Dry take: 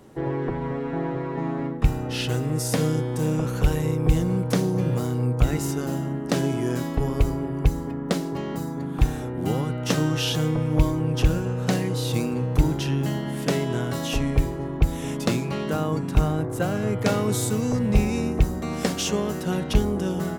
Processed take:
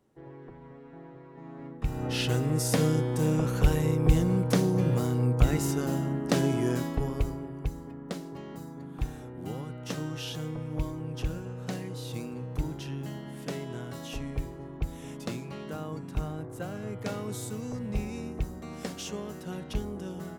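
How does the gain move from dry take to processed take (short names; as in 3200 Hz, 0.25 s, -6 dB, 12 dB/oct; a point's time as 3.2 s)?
1.33 s -20 dB
1.86 s -10.5 dB
2.05 s -2 dB
6.68 s -2 dB
7.61 s -12 dB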